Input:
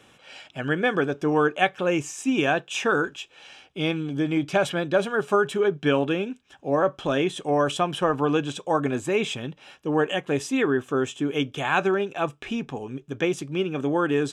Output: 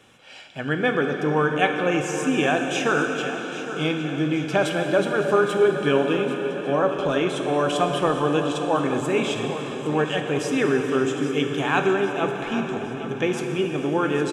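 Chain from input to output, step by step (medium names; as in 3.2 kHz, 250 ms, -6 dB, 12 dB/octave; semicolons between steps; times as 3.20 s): on a send: feedback delay 812 ms, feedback 55%, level -13 dB; on the sum: plate-style reverb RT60 4.7 s, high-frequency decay 0.8×, DRR 3.5 dB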